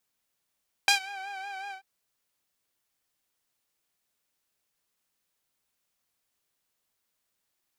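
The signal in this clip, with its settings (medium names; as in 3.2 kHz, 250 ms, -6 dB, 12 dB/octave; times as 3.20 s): synth patch with vibrato G5, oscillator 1 saw, oscillator 2 saw, interval +19 st, detune 24 cents, sub -24 dB, noise -23.5 dB, filter bandpass, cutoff 1.2 kHz, Q 0.75, filter envelope 2 oct, filter sustain 5%, attack 2.1 ms, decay 0.11 s, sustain -23 dB, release 0.11 s, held 0.83 s, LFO 5.4 Hz, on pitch 59 cents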